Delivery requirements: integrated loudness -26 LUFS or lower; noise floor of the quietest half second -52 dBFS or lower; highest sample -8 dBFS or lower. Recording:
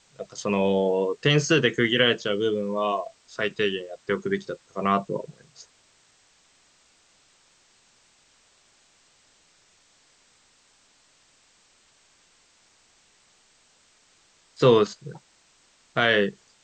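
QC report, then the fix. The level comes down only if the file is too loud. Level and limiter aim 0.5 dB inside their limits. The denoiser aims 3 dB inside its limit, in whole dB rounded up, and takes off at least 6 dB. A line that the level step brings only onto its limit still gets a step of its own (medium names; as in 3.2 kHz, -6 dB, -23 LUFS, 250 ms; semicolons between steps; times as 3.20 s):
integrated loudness -24.0 LUFS: fail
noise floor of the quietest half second -61 dBFS: pass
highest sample -5.5 dBFS: fail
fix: trim -2.5 dB; peak limiter -8.5 dBFS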